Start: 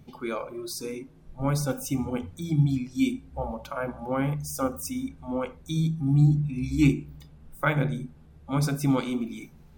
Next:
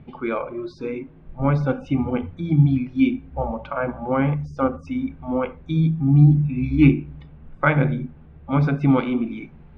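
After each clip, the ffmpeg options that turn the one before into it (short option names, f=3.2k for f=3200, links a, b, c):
-af "lowpass=f=2.8k:w=0.5412,lowpass=f=2.8k:w=1.3066,volume=6.5dB"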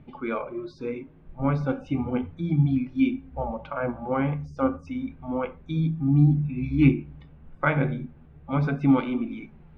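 -af "flanger=delay=3.3:depth=8:regen=68:speed=0.33:shape=sinusoidal"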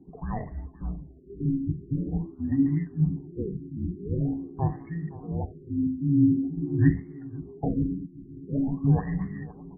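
-af "aecho=1:1:518|1036|1554|2072|2590:0.133|0.072|0.0389|0.021|0.0113,afreqshift=-420,afftfilt=real='re*lt(b*sr/1024,370*pow(2200/370,0.5+0.5*sin(2*PI*0.46*pts/sr)))':imag='im*lt(b*sr/1024,370*pow(2200/370,0.5+0.5*sin(2*PI*0.46*pts/sr)))':win_size=1024:overlap=0.75,volume=-2dB"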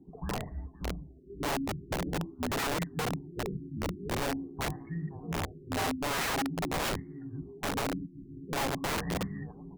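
-af "aeval=exprs='(mod(15*val(0)+1,2)-1)/15':c=same,volume=-3dB"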